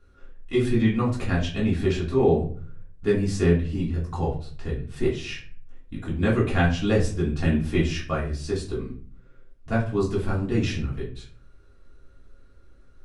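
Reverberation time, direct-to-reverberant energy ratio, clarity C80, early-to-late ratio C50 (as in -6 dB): 0.45 s, -7.0 dB, 12.0 dB, 7.5 dB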